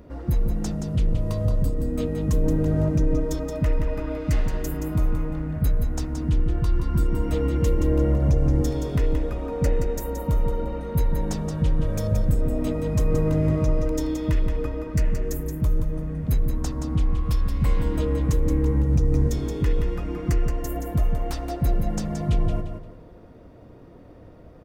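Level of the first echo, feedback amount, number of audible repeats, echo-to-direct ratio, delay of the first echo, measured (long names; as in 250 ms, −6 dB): −7.0 dB, 29%, 3, −6.5 dB, 174 ms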